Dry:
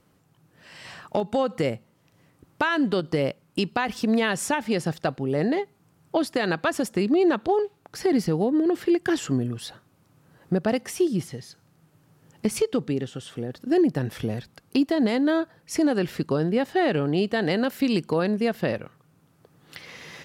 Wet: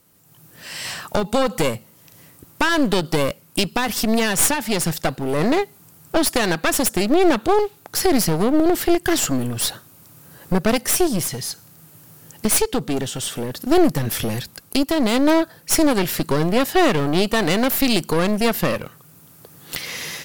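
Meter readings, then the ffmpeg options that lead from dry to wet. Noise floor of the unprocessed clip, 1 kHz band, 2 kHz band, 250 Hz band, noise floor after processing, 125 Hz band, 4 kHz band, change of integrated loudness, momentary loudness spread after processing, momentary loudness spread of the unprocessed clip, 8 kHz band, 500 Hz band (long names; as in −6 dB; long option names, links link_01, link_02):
−63 dBFS, +6.5 dB, +6.0 dB, +3.5 dB, −50 dBFS, +4.0 dB, +10.5 dB, +5.0 dB, 11 LU, 12 LU, +16.0 dB, +4.0 dB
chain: -af "aemphasis=mode=production:type=75fm,dynaudnorm=framelen=110:gausssize=5:maxgain=10dB,aeval=exprs='clip(val(0),-1,0.0631)':channel_layout=same"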